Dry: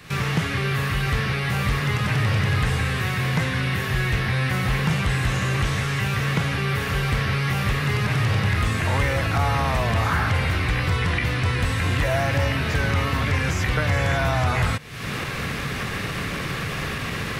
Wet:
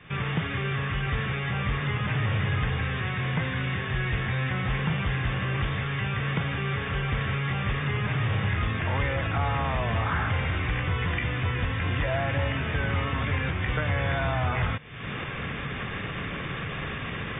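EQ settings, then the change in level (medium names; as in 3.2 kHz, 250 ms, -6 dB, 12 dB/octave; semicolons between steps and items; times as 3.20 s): brick-wall FIR low-pass 3.7 kHz; -5.0 dB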